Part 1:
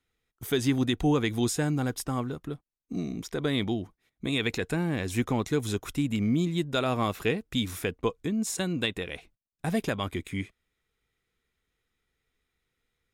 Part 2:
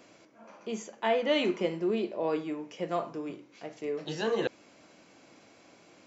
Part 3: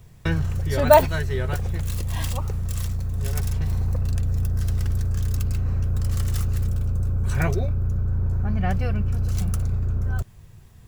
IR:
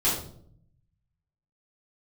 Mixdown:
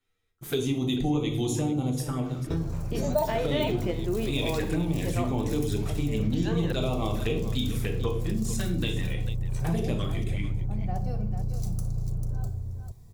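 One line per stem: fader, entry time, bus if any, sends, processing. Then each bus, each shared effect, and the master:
-1.0 dB, 0.00 s, send -11.5 dB, echo send -11.5 dB, envelope flanger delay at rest 10.7 ms, full sweep at -24 dBFS
+2.0 dB, 2.25 s, no send, no echo send, dry
-6.5 dB, 2.25 s, send -17.5 dB, echo send -7.5 dB, band shelf 2000 Hz -13 dB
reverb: on, RT60 0.60 s, pre-delay 3 ms
echo: echo 0.444 s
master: compressor 2.5:1, threshold -25 dBFS, peak gain reduction 8.5 dB

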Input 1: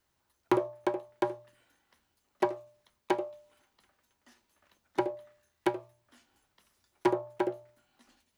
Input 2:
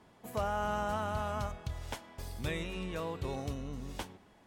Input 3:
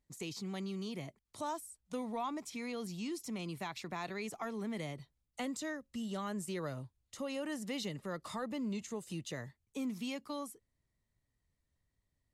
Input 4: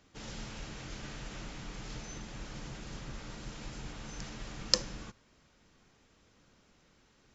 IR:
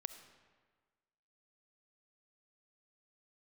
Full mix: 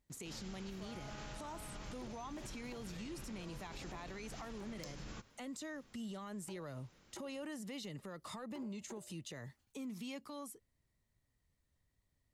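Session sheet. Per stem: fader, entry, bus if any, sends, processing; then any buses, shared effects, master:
-19.0 dB, 1.50 s, bus A, no send, high shelf 7600 Hz +11 dB
-17.5 dB, 0.45 s, no bus, no send, dry
+1.5 dB, 0.00 s, bus A, no send, dry
-1.0 dB, 0.10 s, bus A, no send, dry
bus A: 0.0 dB, soft clip -23.5 dBFS, distortion -13 dB; compressor, threshold -40 dBFS, peak gain reduction 10.5 dB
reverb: off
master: limiter -38.5 dBFS, peak gain reduction 8.5 dB

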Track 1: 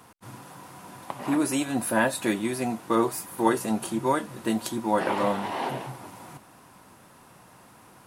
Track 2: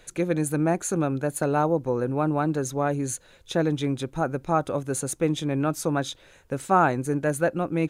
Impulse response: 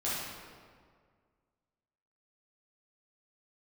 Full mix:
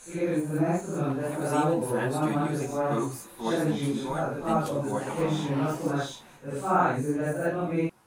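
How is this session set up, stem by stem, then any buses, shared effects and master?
-6.5 dB, 0.00 s, send -21.5 dB, ensemble effect
-3.0 dB, 0.00 s, no send, phase scrambler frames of 0.2 s; de-esser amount 85%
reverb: on, RT60 1.9 s, pre-delay 8 ms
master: dry

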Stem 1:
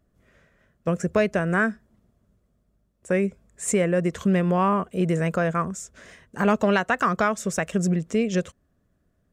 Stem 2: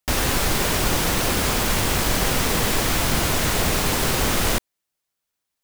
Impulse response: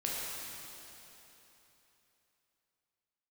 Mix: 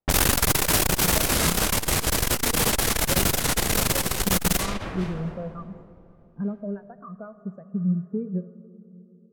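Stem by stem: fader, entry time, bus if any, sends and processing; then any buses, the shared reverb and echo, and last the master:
-1.5 dB, 0.00 s, send -14.5 dB, compressor 8:1, threshold -28 dBFS, peak gain reduction 12.5 dB; spectral expander 2.5:1
+3.0 dB, 0.00 s, send -11.5 dB, auto duck -9 dB, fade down 1.40 s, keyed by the first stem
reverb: on, RT60 3.4 s, pre-delay 6 ms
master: high shelf 7500 Hz +9 dB; low-pass opened by the level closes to 640 Hz, open at -14 dBFS; core saturation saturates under 260 Hz

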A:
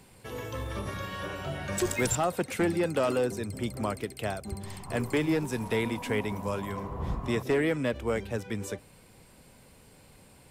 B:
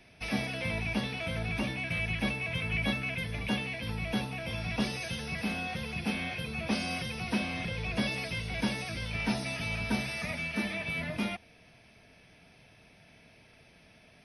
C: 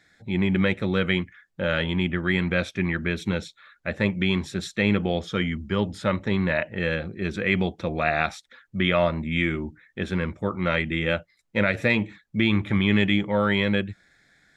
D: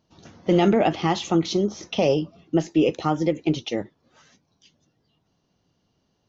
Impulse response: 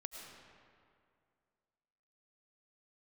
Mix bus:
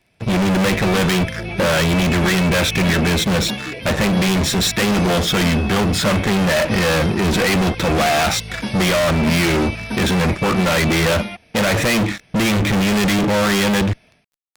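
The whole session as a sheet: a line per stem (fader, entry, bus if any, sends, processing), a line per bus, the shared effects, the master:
-18.5 dB, 0.00 s, no send, dry
-5.5 dB, 0.00 s, no send, AGC gain up to 10.5 dB
-2.0 dB, 0.00 s, no send, fuzz box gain 41 dB, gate -50 dBFS
-15.0 dB, 0.90 s, no send, dry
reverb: off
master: dry

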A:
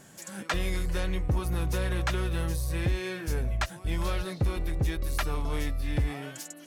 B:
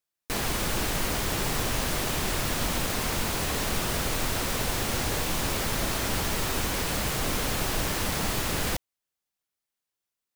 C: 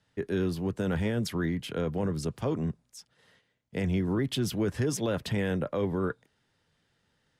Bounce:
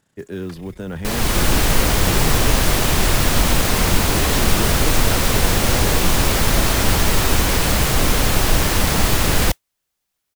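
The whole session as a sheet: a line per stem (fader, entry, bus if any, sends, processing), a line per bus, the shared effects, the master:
-12.5 dB, 0.00 s, no send, AM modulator 30 Hz, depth 80%
+3.0 dB, 0.75 s, no send, low shelf 88 Hz +7 dB; AGC gain up to 7 dB
0.0 dB, 0.00 s, no send, dry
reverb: off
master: modulation noise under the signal 29 dB

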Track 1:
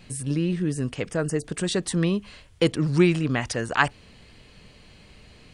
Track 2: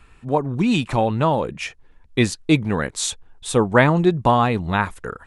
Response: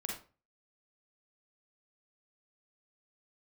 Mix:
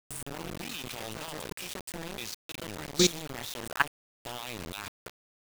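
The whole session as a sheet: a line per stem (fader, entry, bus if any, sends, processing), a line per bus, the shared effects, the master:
-2.0 dB, 0.00 s, no send, no echo send, low shelf 100 Hz -7 dB; notch 4000 Hz, Q 6.5; AM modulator 150 Hz, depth 35%
-11.0 dB, 0.00 s, muted 3.61–4.2, no send, echo send -22 dB, band shelf 4000 Hz +16 dB; hard clip -6 dBFS, distortion -14 dB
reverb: off
echo: feedback echo 91 ms, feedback 45%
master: level quantiser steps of 20 dB; requantised 6-bit, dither none

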